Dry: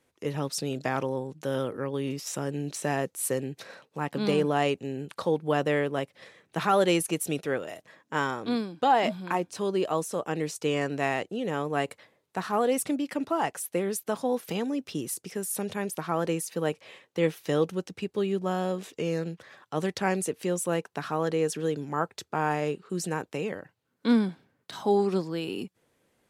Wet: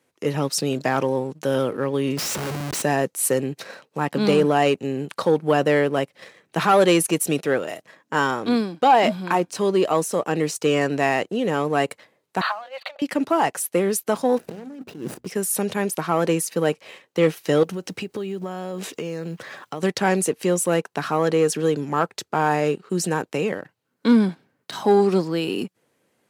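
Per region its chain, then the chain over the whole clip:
0:02.17–0:02.82: amplitude modulation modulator 45 Hz, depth 20% + comparator with hysteresis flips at −47.5 dBFS
0:12.41–0:13.02: compressor whose output falls as the input rises −31 dBFS, ratio −0.5 + linear-phase brick-wall band-pass 510–4,700 Hz
0:14.38–0:15.27: running median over 41 samples + compressor whose output falls as the input rises −41 dBFS + mains-hum notches 60/120/180/240 Hz
0:17.63–0:19.83: mu-law and A-law mismatch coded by mu + downward compressor, threshold −34 dBFS
whole clip: leveller curve on the samples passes 1; high-pass filter 120 Hz; notch filter 3,500 Hz, Q 24; level +4.5 dB

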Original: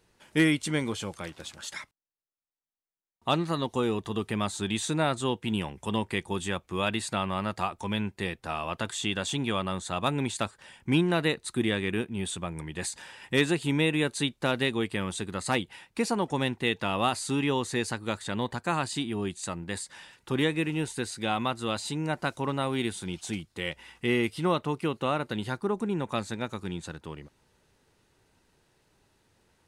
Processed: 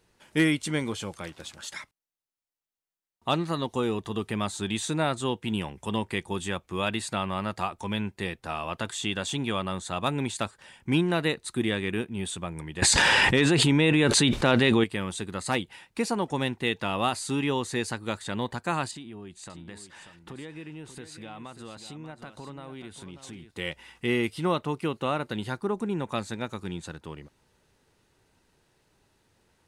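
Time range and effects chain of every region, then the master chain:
0:12.82–0:14.84: high-frequency loss of the air 54 metres + envelope flattener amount 100%
0:18.91–0:23.51: high-shelf EQ 4,400 Hz −8 dB + downward compressor 4 to 1, threshold −40 dBFS + single-tap delay 588 ms −10.5 dB
whole clip: no processing

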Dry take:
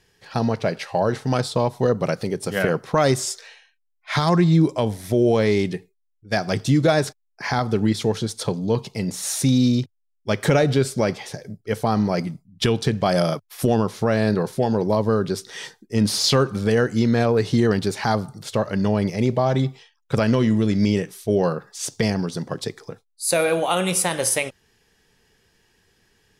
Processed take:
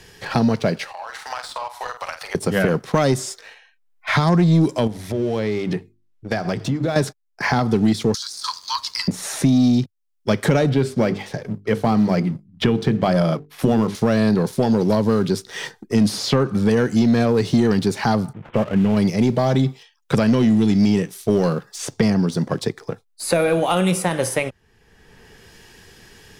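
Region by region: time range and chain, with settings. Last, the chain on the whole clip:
0:00.92–0:02.35: inverse Chebyshev high-pass filter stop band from 250 Hz, stop band 60 dB + downward compressor 4 to 1, threshold −39 dBFS + double-tracking delay 48 ms −7 dB
0:04.87–0:06.96: low-pass filter 3,100 Hz 6 dB per octave + downward compressor 5 to 1, threshold −26 dBFS + mains-hum notches 50/100/150/200/250/300/350 Hz
0:08.14–0:09.08: Butterworth high-pass 970 Hz 96 dB per octave + high shelf with overshoot 3,400 Hz +11.5 dB, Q 3 + compressor whose output falls as the input rises −26 dBFS
0:10.69–0:13.95: bass and treble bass 0 dB, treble −13 dB + mains-hum notches 50/100/150/200/250/300/350/400/450 Hz
0:18.33–0:18.97: variable-slope delta modulation 16 kbit/s + low-pass filter 1,400 Hz 6 dB per octave
whole clip: dynamic equaliser 220 Hz, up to +6 dB, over −31 dBFS, Q 1; leveller curve on the samples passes 1; multiband upward and downward compressor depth 70%; level −3.5 dB

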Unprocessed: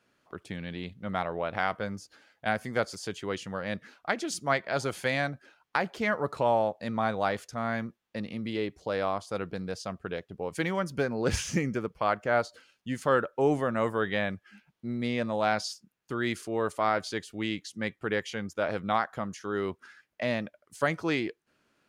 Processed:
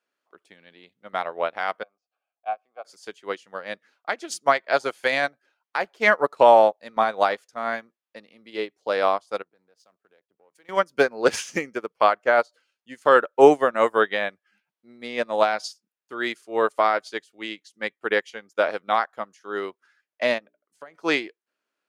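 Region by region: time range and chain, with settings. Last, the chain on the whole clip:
0:01.83–0:02.85: formant filter a + high-frequency loss of the air 71 metres
0:09.42–0:10.69: mu-law and A-law mismatch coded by A + downward compressor 3 to 1, threshold −47 dBFS + multiband upward and downward expander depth 70%
0:20.38–0:20.95: high-shelf EQ 2,200 Hz −9 dB + mains-hum notches 60/120/180/240/300/360/420 Hz + downward compressor 10 to 1, threshold −33 dBFS
whole clip: high-pass filter 400 Hz 12 dB per octave; boost into a limiter +17 dB; expander for the loud parts 2.5 to 1, over −26 dBFS

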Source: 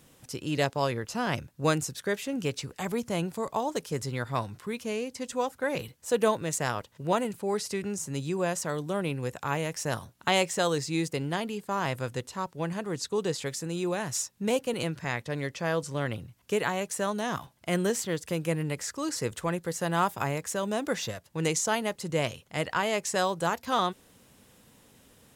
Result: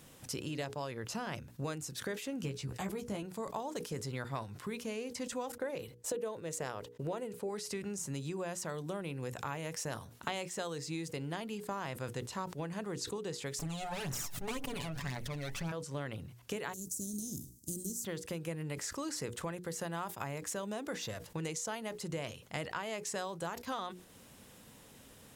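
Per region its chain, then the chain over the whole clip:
0:02.42–0:03.23: low-shelf EQ 260 Hz +8 dB + double-tracking delay 15 ms −4.5 dB
0:05.52–0:07.49: noise gate −55 dBFS, range −21 dB + parametric band 460 Hz +8 dB 0.75 octaves
0:13.59–0:15.72: lower of the sound and its delayed copy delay 7 ms + phase shifter 1.9 Hz, delay 1.6 ms, feedback 56% + level that may fall only so fast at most 37 dB per second
0:16.72–0:18.04: compressing power law on the bin magnitudes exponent 0.63 + Chebyshev band-stop filter 300–6,400 Hz, order 3
whole clip: downward compressor 10 to 1, threshold −37 dBFS; mains-hum notches 60/120/180/240/300/360/420/480 Hz; level that may fall only so fast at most 100 dB per second; level +1.5 dB

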